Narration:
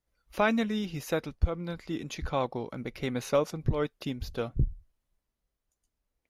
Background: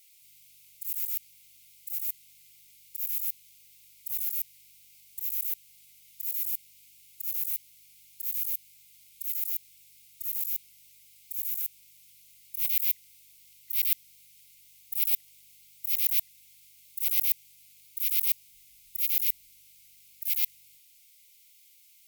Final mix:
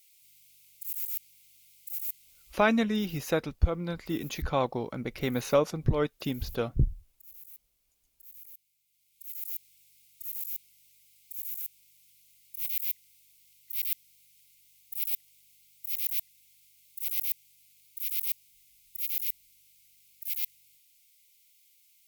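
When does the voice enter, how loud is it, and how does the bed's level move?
2.20 s, +2.0 dB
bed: 2.51 s -2.5 dB
2.85 s -18.5 dB
8.84 s -18.5 dB
9.51 s -5 dB

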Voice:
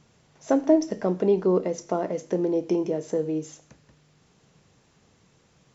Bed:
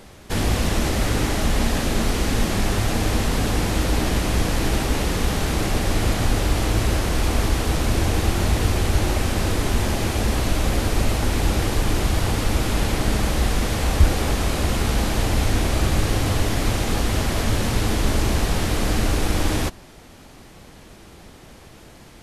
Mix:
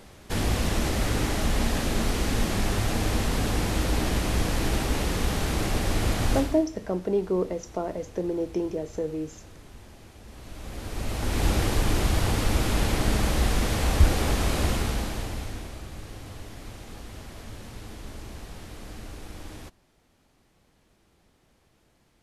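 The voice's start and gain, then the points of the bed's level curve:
5.85 s, -4.0 dB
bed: 6.37 s -4.5 dB
6.69 s -26.5 dB
10.22 s -26.5 dB
11.45 s -3 dB
14.66 s -3 dB
15.85 s -20 dB

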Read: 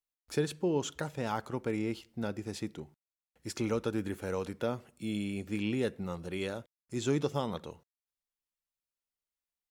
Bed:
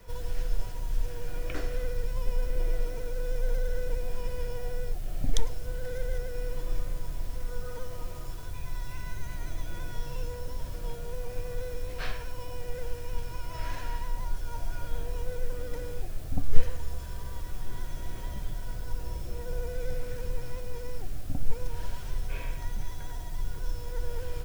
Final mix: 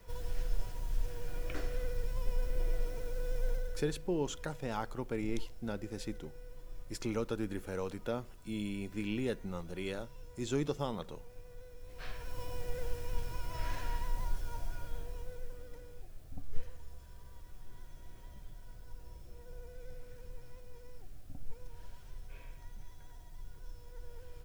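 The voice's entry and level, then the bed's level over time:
3.45 s, -3.5 dB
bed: 3.48 s -5 dB
4.01 s -17 dB
11.77 s -17 dB
12.39 s -3 dB
14.28 s -3 dB
15.87 s -15.5 dB

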